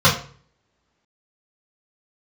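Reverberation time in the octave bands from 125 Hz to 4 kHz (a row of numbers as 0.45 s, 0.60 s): 0.65 s, 0.50 s, 0.50 s, 0.45 s, 0.40 s, 0.35 s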